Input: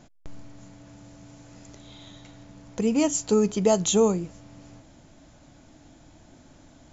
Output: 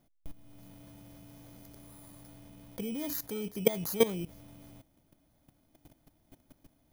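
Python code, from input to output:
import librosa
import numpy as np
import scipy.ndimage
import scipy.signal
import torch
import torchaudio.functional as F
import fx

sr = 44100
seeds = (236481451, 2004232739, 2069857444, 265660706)

y = fx.bit_reversed(x, sr, seeds[0], block=16)
y = fx.level_steps(y, sr, step_db=17)
y = y * librosa.db_to_amplitude(-1.5)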